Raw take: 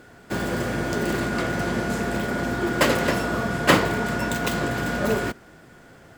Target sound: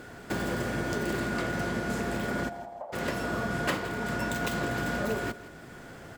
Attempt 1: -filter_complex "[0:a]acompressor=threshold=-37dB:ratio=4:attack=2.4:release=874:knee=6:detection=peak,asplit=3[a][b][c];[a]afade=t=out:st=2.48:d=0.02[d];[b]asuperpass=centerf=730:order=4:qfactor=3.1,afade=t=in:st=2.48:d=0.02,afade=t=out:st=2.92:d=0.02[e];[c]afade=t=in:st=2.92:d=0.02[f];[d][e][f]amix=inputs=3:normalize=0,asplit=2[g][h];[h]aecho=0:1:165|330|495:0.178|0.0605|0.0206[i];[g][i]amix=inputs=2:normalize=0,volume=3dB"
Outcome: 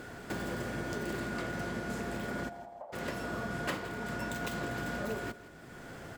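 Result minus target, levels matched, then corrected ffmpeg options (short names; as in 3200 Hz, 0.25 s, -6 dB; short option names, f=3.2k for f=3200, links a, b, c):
compressor: peak gain reduction +6 dB
-filter_complex "[0:a]acompressor=threshold=-29dB:ratio=4:attack=2.4:release=874:knee=6:detection=peak,asplit=3[a][b][c];[a]afade=t=out:st=2.48:d=0.02[d];[b]asuperpass=centerf=730:order=4:qfactor=3.1,afade=t=in:st=2.48:d=0.02,afade=t=out:st=2.92:d=0.02[e];[c]afade=t=in:st=2.92:d=0.02[f];[d][e][f]amix=inputs=3:normalize=0,asplit=2[g][h];[h]aecho=0:1:165|330|495:0.178|0.0605|0.0206[i];[g][i]amix=inputs=2:normalize=0,volume=3dB"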